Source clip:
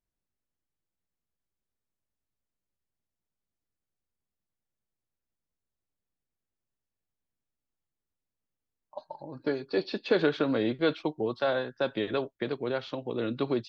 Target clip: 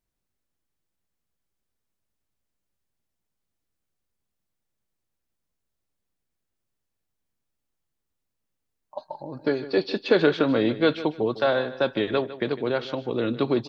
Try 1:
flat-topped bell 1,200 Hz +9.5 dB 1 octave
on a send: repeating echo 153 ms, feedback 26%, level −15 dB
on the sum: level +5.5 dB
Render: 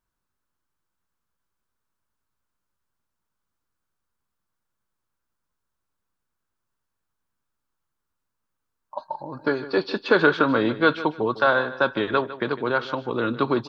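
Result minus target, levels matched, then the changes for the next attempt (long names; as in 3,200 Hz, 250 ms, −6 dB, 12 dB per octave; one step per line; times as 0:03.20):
1,000 Hz band +6.0 dB
remove: flat-topped bell 1,200 Hz +9.5 dB 1 octave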